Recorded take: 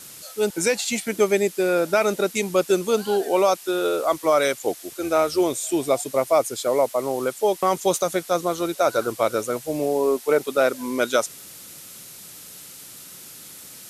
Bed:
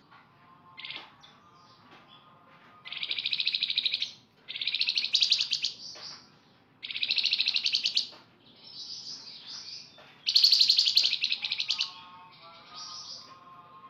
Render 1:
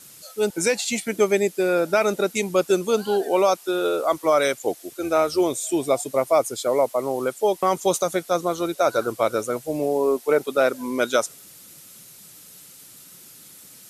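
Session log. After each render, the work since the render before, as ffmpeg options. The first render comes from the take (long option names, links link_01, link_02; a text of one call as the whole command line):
ffmpeg -i in.wav -af "afftdn=noise_reduction=6:noise_floor=-42" out.wav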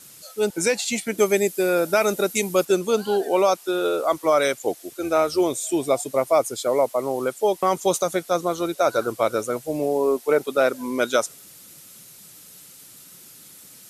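ffmpeg -i in.wav -filter_complex "[0:a]asettb=1/sr,asplit=3[link_01][link_02][link_03];[link_01]atrim=end=1.184[link_04];[link_02]atrim=start=1.18:end=2.65,asetpts=PTS-STARTPTS,afade=type=in:duration=0.004:curve=qsin,afade=type=out:start_time=1.466:duration=0.004:curve=qsin,highshelf=frequency=8400:gain=11.5[link_05];[link_03]atrim=start=2.646[link_06];[link_04][link_05]acrossfade=duration=0.004:curve1=hsin:curve2=qsin[link_07];[link_07][link_06]acrossfade=duration=0.004:curve1=qsin:curve2=hsin" out.wav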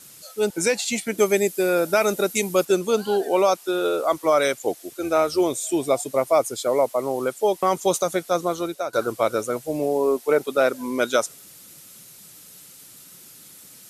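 ffmpeg -i in.wav -filter_complex "[0:a]asplit=2[link_01][link_02];[link_01]atrim=end=8.93,asetpts=PTS-STARTPTS,afade=type=out:start_time=8.42:duration=0.51:curve=qsin:silence=0.16788[link_03];[link_02]atrim=start=8.93,asetpts=PTS-STARTPTS,afade=type=in:duration=0.004:curve=hsin:silence=0.16788[link_04];[link_03][link_04]concat=n=2:v=0:a=1" out.wav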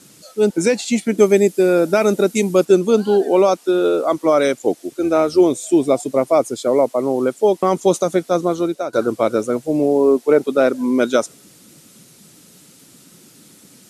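ffmpeg -i in.wav -af "lowpass=9900,equalizer=frequency=250:width_type=o:width=1.9:gain=11" out.wav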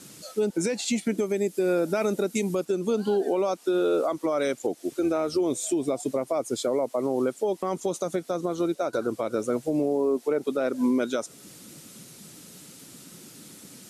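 ffmpeg -i in.wav -af "acompressor=threshold=-14dB:ratio=10,alimiter=limit=-16.5dB:level=0:latency=1:release=333" out.wav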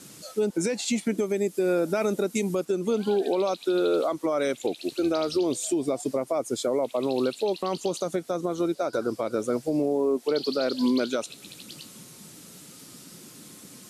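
ffmpeg -i in.wav -i bed.wav -filter_complex "[1:a]volume=-16dB[link_01];[0:a][link_01]amix=inputs=2:normalize=0" out.wav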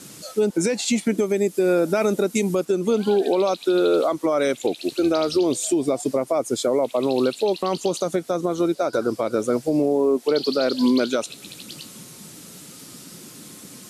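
ffmpeg -i in.wav -af "volume=5dB" out.wav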